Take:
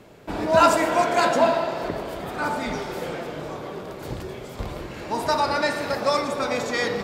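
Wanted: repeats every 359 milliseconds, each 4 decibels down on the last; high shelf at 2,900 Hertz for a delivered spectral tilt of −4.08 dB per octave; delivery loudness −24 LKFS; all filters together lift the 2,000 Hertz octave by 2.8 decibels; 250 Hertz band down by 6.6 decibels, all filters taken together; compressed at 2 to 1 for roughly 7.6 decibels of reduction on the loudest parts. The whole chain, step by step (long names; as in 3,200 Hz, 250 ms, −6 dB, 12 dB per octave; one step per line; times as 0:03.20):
parametric band 250 Hz −9 dB
parametric band 2,000 Hz +5 dB
high-shelf EQ 2,900 Hz −3.5 dB
downward compressor 2 to 1, threshold −25 dBFS
repeating echo 359 ms, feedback 63%, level −4 dB
level +2.5 dB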